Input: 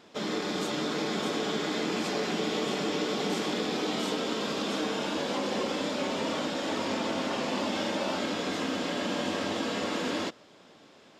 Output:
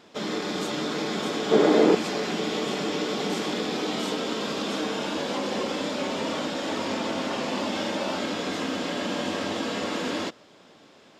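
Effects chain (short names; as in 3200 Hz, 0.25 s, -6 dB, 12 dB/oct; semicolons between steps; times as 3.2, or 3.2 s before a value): 1.51–1.95 bell 470 Hz +14 dB 2.3 oct; gain +2 dB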